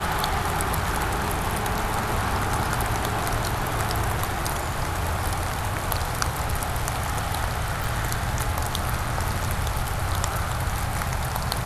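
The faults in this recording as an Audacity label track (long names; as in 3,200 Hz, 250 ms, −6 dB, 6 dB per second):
7.840000	7.840000	click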